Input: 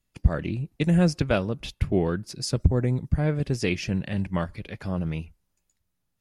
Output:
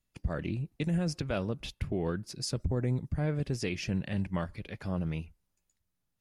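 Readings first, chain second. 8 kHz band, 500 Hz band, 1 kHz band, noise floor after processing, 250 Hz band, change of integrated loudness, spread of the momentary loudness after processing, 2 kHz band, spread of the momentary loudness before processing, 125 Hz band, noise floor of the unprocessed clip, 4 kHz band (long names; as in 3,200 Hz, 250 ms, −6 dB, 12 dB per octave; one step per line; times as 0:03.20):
−5.0 dB, −8.0 dB, −7.5 dB, −82 dBFS, −7.5 dB, −7.5 dB, 6 LU, −7.5 dB, 10 LU, −7.5 dB, −77 dBFS, −5.5 dB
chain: brickwall limiter −18 dBFS, peak gain reduction 10.5 dB
level −4.5 dB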